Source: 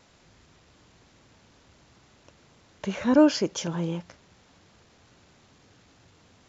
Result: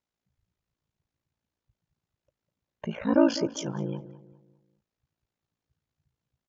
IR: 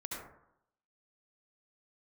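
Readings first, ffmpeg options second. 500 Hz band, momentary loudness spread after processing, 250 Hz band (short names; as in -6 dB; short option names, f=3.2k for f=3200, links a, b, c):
-2.5 dB, 17 LU, -3.0 dB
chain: -filter_complex "[0:a]afftdn=nr=28:nf=-40,aeval=exprs='val(0)*sin(2*PI*28*n/s)':c=same,asplit=2[a][b];[b]adelay=201,lowpass=f=1.6k:p=1,volume=-14dB,asplit=2[c][d];[d]adelay=201,lowpass=f=1.6k:p=1,volume=0.4,asplit=2[e][f];[f]adelay=201,lowpass=f=1.6k:p=1,volume=0.4,asplit=2[g][h];[h]adelay=201,lowpass=f=1.6k:p=1,volume=0.4[i];[a][c][e][g][i]amix=inputs=5:normalize=0"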